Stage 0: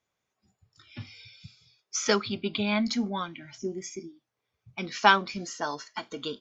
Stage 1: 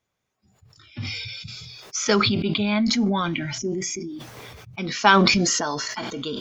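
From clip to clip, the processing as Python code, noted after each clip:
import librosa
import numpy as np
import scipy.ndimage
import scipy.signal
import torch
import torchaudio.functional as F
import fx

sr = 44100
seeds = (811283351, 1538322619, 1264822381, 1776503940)

y = fx.low_shelf(x, sr, hz=230.0, db=6.0)
y = fx.sustainer(y, sr, db_per_s=22.0)
y = y * librosa.db_to_amplitude(2.0)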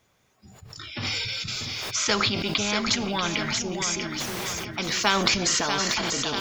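y = fx.echo_feedback(x, sr, ms=639, feedback_pct=35, wet_db=-11.5)
y = fx.spectral_comp(y, sr, ratio=2.0)
y = y * librosa.db_to_amplitude(-4.0)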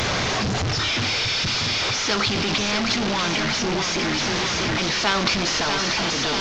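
y = fx.delta_mod(x, sr, bps=32000, step_db=-16.5)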